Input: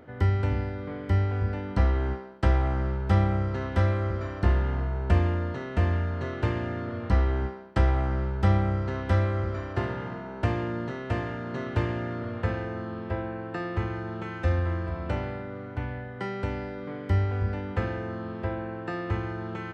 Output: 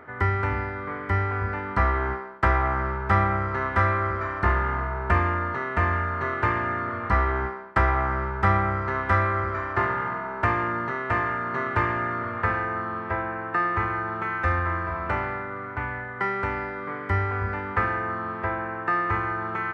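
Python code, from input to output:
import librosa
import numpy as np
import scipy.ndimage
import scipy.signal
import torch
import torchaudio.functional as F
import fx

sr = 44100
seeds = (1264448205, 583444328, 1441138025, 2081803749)

y = fx.band_shelf(x, sr, hz=1400.0, db=13.5, octaves=1.7)
y = fx.small_body(y, sr, hz=(410.0, 640.0, 1200.0), ring_ms=40, db=7)
y = y * librosa.db_to_amplitude(-2.5)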